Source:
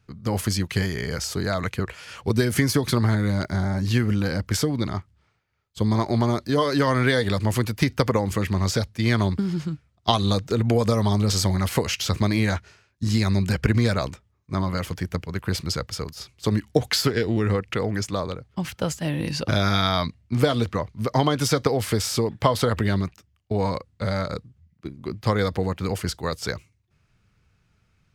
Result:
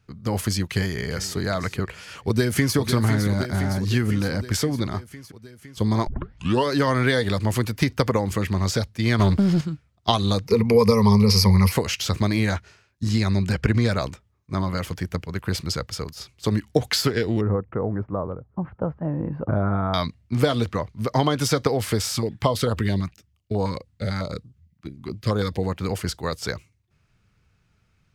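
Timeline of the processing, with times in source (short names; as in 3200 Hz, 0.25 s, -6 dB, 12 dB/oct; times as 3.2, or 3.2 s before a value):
0.58–1.37 echo throw 0.4 s, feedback 35%, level -15 dB
2.01–2.76 echo throw 0.51 s, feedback 70%, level -8 dB
6.07 tape start 0.59 s
9.19–9.61 sample leveller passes 2
10.47–11.72 ripple EQ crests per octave 0.86, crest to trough 16 dB
13.09–13.92 high shelf 11000 Hz -10 dB
17.41–19.94 LPF 1200 Hz 24 dB/oct
22.12–25.63 stepped notch 9.1 Hz 440–2000 Hz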